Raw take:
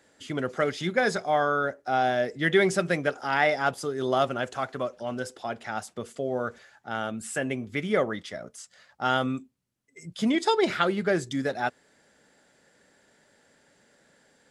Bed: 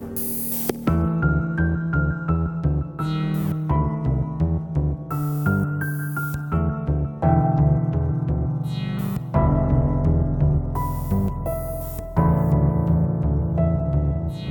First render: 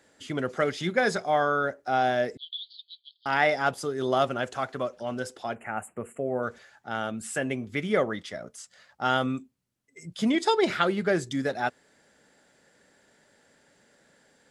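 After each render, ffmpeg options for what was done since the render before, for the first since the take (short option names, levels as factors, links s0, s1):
-filter_complex "[0:a]asettb=1/sr,asplit=3[s0][s1][s2];[s0]atrim=end=2.374[s3];[s1]atrim=start=2.37:end=3.26,asetpts=PTS-STARTPTS,afade=t=in:d=0.004:c=qsin,afade=t=out:st=0.886:d=0.004:c=qsin,asuperpass=centerf=3800:order=12:qfactor=2.7[s4];[s2]atrim=start=3.256[s5];[s3][s4]acrossfade=d=0.004:c1=hsin:c2=qsin[s6];[s6][s5]acrossfade=d=0.004:c1=qsin:c2=hsin,asettb=1/sr,asplit=3[s7][s8][s9];[s7]atrim=end=5.554[s10];[s8]atrim=start=5.55:end=6.43,asetpts=PTS-STARTPTS,afade=t=in:d=0.004:c=qsin,afade=t=out:st=0.876:d=0.004:c=qsin,asuperstop=centerf=4600:order=12:qfactor=1[s11];[s9]atrim=start=6.426[s12];[s10][s11]acrossfade=d=0.004:c1=hsin:c2=qsin[s13];[s13][s12]acrossfade=d=0.004:c1=qsin:c2=hsin"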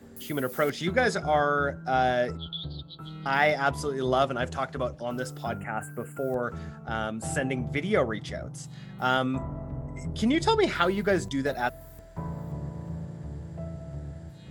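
-filter_complex "[1:a]volume=0.141[s0];[0:a][s0]amix=inputs=2:normalize=0"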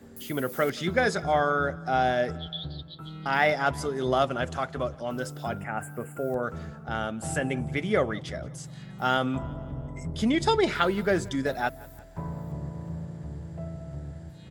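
-af "aecho=1:1:176|352|528|704:0.0708|0.0396|0.0222|0.0124"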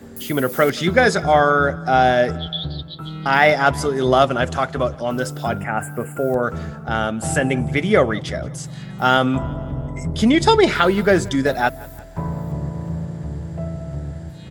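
-af "volume=2.99,alimiter=limit=0.891:level=0:latency=1"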